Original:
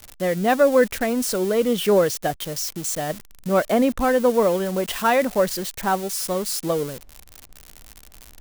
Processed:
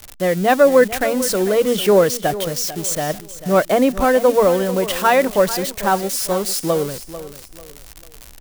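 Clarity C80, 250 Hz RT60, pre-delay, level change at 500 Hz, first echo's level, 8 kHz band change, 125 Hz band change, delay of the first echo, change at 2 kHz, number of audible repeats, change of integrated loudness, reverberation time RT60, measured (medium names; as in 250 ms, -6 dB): no reverb, no reverb, no reverb, +4.5 dB, -14.0 dB, +4.5 dB, +4.5 dB, 444 ms, +4.5 dB, 3, +4.5 dB, no reverb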